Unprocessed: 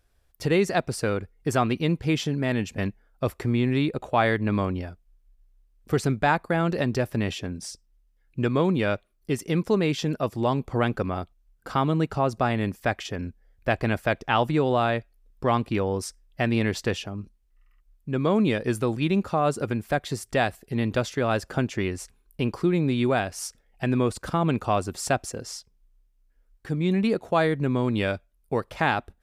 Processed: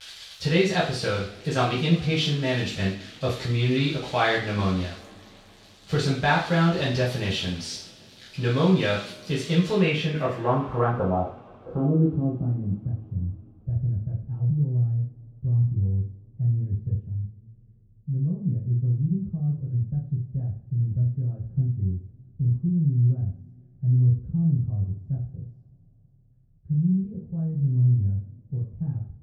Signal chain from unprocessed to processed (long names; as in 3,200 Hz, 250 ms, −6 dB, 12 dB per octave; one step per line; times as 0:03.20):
spike at every zero crossing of −23 dBFS
low-pass filter sweep 3,800 Hz → 120 Hz, 0:09.61–0:12.94
coupled-rooms reverb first 0.45 s, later 4.4 s, from −28 dB, DRR −6.5 dB
level −8 dB